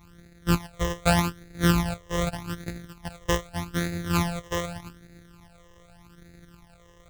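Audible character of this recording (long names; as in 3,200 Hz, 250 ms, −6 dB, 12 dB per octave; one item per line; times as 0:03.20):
a buzz of ramps at a fixed pitch in blocks of 256 samples
phaser sweep stages 12, 0.83 Hz, lowest notch 240–1,000 Hz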